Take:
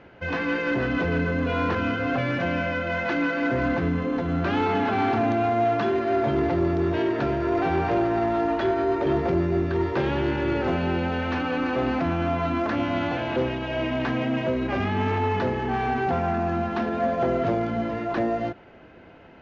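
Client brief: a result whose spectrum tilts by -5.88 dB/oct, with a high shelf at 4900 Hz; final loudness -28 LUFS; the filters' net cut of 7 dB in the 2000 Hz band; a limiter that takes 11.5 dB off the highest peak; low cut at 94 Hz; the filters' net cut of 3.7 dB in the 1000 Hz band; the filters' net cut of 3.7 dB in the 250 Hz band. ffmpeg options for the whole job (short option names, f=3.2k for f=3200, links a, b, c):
-af "highpass=94,equalizer=f=250:t=o:g=-4.5,equalizer=f=1k:t=o:g=-3.5,equalizer=f=2k:t=o:g=-7,highshelf=f=4.9k:g=-7.5,volume=6.5dB,alimiter=limit=-20.5dB:level=0:latency=1"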